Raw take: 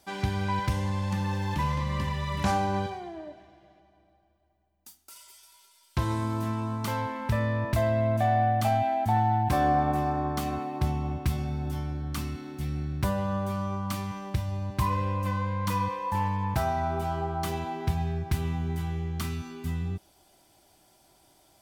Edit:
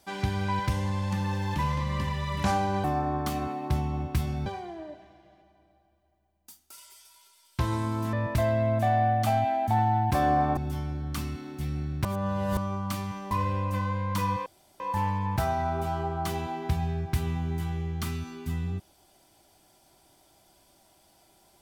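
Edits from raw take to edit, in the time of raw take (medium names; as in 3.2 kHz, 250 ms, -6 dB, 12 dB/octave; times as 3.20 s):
6.51–7.51 s: delete
9.95–11.57 s: move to 2.84 s
13.05–13.57 s: reverse
14.31–14.83 s: delete
15.98 s: insert room tone 0.34 s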